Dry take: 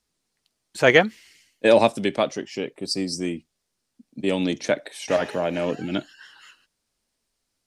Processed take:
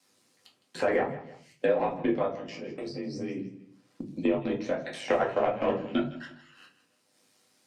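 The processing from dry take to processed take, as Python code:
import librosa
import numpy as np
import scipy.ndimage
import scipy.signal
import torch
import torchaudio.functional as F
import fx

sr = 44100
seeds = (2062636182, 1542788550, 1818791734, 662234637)

y = scipy.signal.sosfilt(scipy.signal.butter(8, 160.0, 'highpass', fs=sr, output='sos'), x)
y = fx.env_lowpass_down(y, sr, base_hz=1500.0, full_db=-18.5)
y = fx.dynamic_eq(y, sr, hz=1000.0, q=0.9, threshold_db=-31.0, ratio=4.0, max_db=4)
y = fx.hpss(y, sr, part='percussive', gain_db=3)
y = fx.high_shelf(y, sr, hz=6500.0, db=-9.0, at=(2.04, 4.31))
y = fx.level_steps(y, sr, step_db=22)
y = y * np.sin(2.0 * np.pi * 50.0 * np.arange(len(y)) / sr)
y = 10.0 ** (-13.5 / 20.0) * np.tanh(y / 10.0 ** (-13.5 / 20.0))
y = fx.tremolo_random(y, sr, seeds[0], hz=3.5, depth_pct=55)
y = fx.echo_feedback(y, sr, ms=159, feedback_pct=24, wet_db=-18.0)
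y = fx.room_shoebox(y, sr, seeds[1], volume_m3=150.0, walls='furnished', distance_m=2.1)
y = fx.band_squash(y, sr, depth_pct=70)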